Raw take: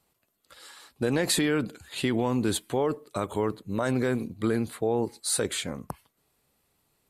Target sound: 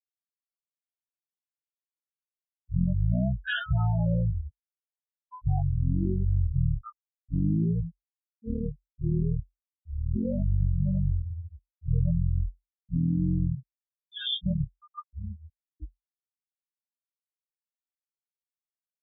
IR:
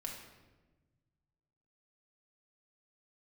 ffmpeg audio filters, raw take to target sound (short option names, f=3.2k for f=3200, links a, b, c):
-af "afftfilt=real='re*gte(hypot(re,im),0.126)':imag='im*gte(hypot(re,im),0.126)':win_size=1024:overlap=0.75,adynamicequalizer=threshold=0.00501:dfrequency=120:dqfactor=2.4:tfrequency=120:tqfactor=2.4:attack=5:release=100:ratio=0.375:range=3:mode=boostabove:tftype=bell,asetrate=16449,aresample=44100"